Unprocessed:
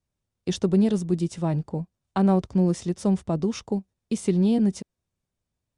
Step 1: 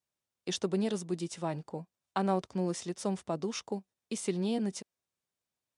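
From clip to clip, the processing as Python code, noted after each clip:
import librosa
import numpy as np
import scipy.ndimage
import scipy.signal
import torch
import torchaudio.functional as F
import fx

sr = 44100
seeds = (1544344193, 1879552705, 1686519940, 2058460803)

y = fx.highpass(x, sr, hz=670.0, slope=6)
y = F.gain(torch.from_numpy(y), -1.5).numpy()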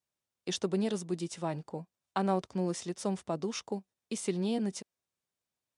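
y = x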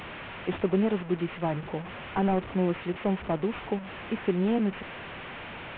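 y = fx.delta_mod(x, sr, bps=16000, step_db=-39.5)
y = F.gain(torch.from_numpy(y), 6.0).numpy()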